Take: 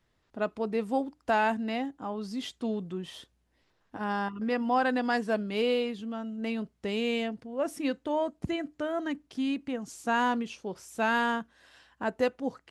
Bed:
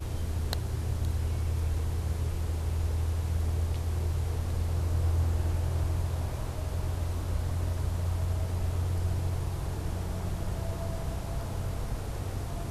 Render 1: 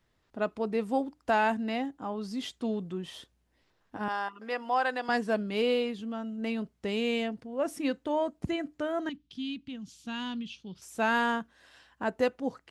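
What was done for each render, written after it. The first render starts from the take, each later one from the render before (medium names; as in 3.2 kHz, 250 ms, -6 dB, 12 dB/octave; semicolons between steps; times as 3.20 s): 4.08–5.09 s: high-pass 530 Hz; 9.09–10.82 s: FFT filter 190 Hz 0 dB, 560 Hz -20 dB, 1 kHz -15 dB, 2 kHz -11 dB, 3.3 kHz +4 dB, 8.2 kHz -13 dB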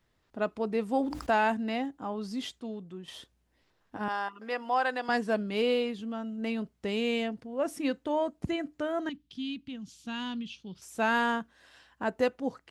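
0.96–1.37 s: decay stretcher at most 70 dB/s; 2.60–3.08 s: gain -7 dB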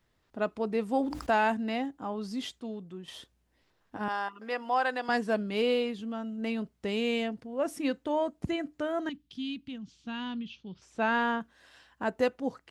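9.78–11.41 s: distance through air 140 m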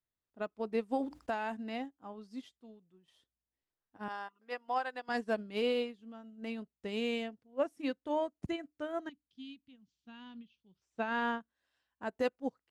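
peak limiter -21 dBFS, peak gain reduction 6 dB; upward expansion 2.5:1, over -42 dBFS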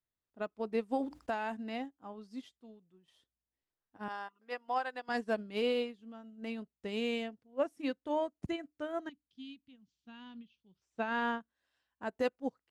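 no audible change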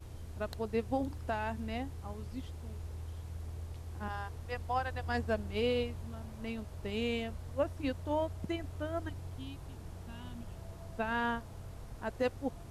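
add bed -13.5 dB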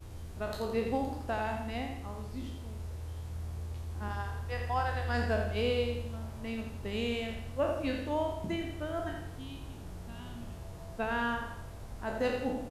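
spectral sustain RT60 0.54 s; feedback delay 84 ms, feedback 46%, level -7 dB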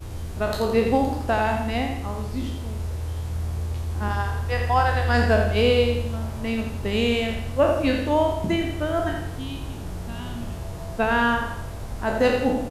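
trim +11.5 dB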